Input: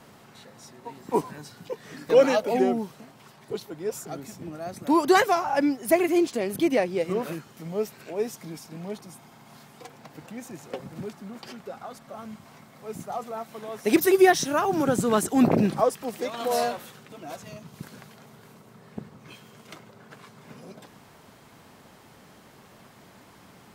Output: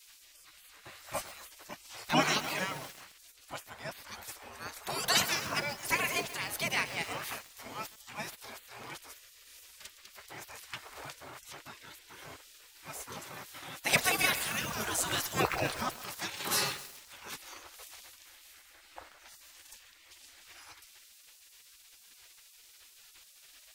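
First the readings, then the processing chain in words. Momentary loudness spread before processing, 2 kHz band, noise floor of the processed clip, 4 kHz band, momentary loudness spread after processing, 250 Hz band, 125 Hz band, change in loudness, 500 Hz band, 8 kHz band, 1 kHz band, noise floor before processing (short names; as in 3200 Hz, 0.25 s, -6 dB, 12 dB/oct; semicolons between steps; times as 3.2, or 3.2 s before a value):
22 LU, -1.0 dB, -59 dBFS, +3.5 dB, 24 LU, -17.5 dB, -8.0 dB, -8.5 dB, -17.0 dB, +1.0 dB, -9.0 dB, -53 dBFS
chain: spectral gate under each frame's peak -20 dB weak; lo-fi delay 0.133 s, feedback 80%, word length 7-bit, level -13 dB; gain +5 dB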